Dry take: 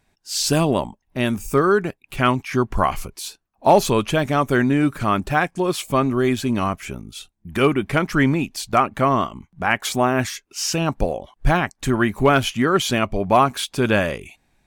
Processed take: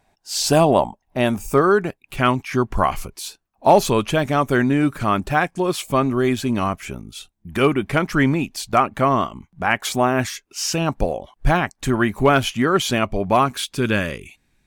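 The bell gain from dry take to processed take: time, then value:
bell 730 Hz 0.95 oct
1.29 s +9.5 dB
2.01 s +1 dB
13.18 s +1 dB
13.79 s -9 dB

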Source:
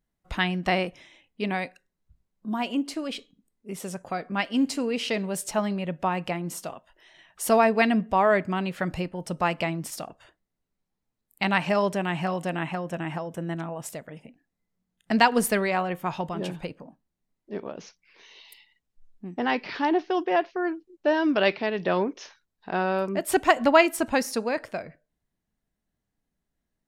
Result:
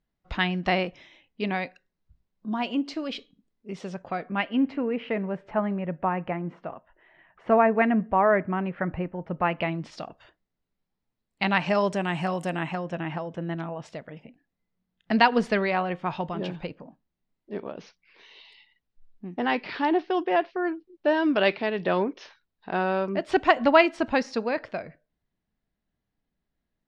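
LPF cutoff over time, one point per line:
LPF 24 dB/oct
3.75 s 5300 Hz
4.91 s 2100 Hz
9.29 s 2100 Hz
10.03 s 5100 Hz
11.43 s 5100 Hz
12.4 s 12000 Hz
13.01 s 4700 Hz

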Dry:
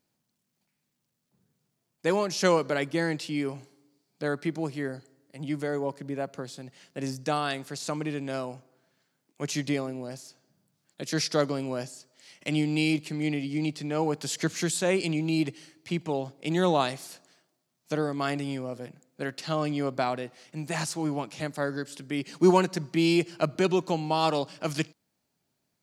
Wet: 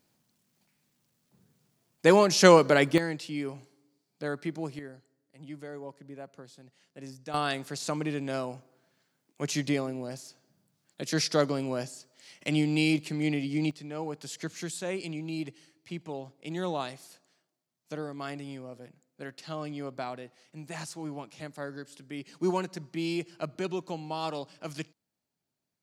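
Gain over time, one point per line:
+6 dB
from 2.98 s -4 dB
from 4.79 s -11.5 dB
from 7.34 s 0 dB
from 13.71 s -8.5 dB

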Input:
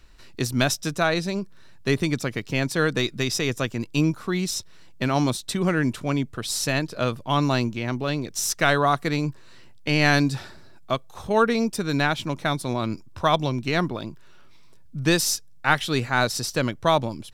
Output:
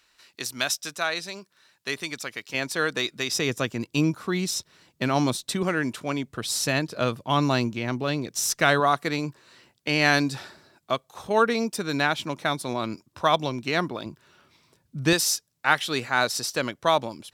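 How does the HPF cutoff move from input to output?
HPF 6 dB/oct
1400 Hz
from 2.54 s 600 Hz
from 3.32 s 140 Hz
from 5.63 s 360 Hz
from 6.27 s 110 Hz
from 8.8 s 290 Hz
from 14.06 s 110 Hz
from 15.13 s 420 Hz

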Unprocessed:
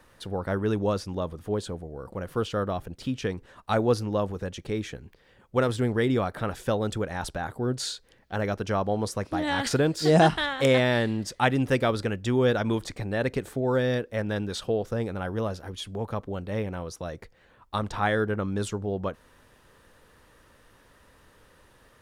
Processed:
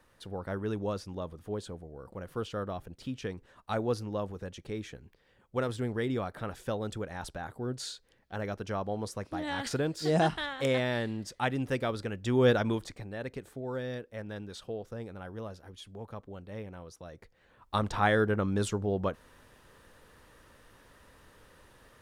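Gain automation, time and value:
12.11 s -7.5 dB
12.49 s 0 dB
13.12 s -11.5 dB
17.09 s -11.5 dB
17.76 s -0.5 dB

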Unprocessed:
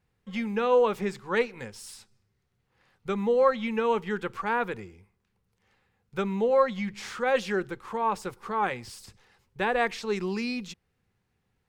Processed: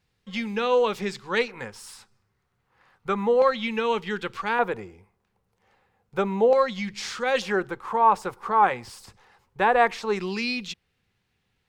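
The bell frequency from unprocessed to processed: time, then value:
bell +9.5 dB 1.7 oct
4300 Hz
from 1.48 s 1100 Hz
from 3.42 s 3900 Hz
from 4.59 s 720 Hz
from 6.53 s 4800 Hz
from 7.42 s 900 Hz
from 10.19 s 3300 Hz

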